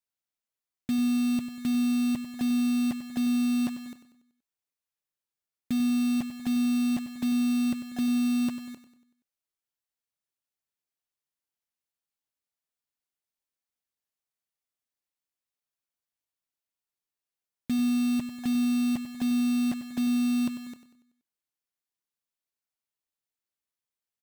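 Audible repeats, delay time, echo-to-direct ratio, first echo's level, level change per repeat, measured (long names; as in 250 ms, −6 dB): 4, 95 ms, −11.5 dB, −12.5 dB, −6.5 dB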